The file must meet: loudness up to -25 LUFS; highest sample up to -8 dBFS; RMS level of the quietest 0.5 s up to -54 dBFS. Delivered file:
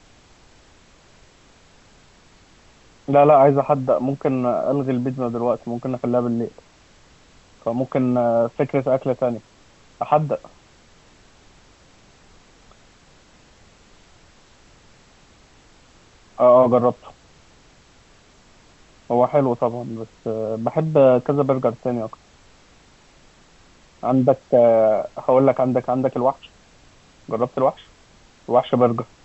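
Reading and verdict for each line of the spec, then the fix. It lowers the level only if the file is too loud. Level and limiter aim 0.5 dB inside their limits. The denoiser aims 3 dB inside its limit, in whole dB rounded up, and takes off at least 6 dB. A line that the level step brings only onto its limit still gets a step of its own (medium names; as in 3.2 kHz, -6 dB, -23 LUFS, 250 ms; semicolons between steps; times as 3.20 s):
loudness -19.5 LUFS: fail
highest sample -3.5 dBFS: fail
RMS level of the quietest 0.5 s -52 dBFS: fail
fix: trim -6 dB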